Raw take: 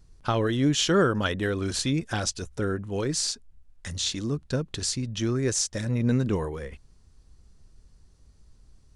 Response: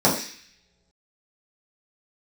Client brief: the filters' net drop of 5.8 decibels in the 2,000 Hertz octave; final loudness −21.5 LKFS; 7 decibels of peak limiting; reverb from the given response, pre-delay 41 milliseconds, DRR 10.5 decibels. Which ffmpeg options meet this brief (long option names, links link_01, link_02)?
-filter_complex "[0:a]equalizer=frequency=2000:width_type=o:gain=-8.5,alimiter=limit=-19.5dB:level=0:latency=1,asplit=2[link_01][link_02];[1:a]atrim=start_sample=2205,adelay=41[link_03];[link_02][link_03]afir=irnorm=-1:irlink=0,volume=-30dB[link_04];[link_01][link_04]amix=inputs=2:normalize=0,volume=7dB"